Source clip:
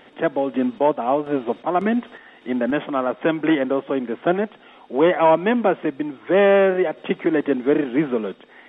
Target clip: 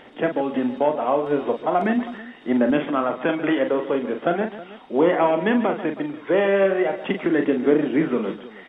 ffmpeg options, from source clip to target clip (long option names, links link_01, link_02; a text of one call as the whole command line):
ffmpeg -i in.wav -af "acompressor=threshold=-16dB:ratio=6,aphaser=in_gain=1:out_gain=1:delay=2.2:decay=0.28:speed=0.39:type=triangular,aecho=1:1:41|141|320:0.447|0.211|0.133" out.wav